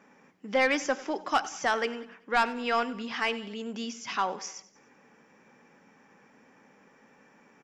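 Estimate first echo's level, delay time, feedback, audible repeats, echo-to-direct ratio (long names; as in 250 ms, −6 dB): −17.5 dB, 95 ms, 47%, 3, −16.5 dB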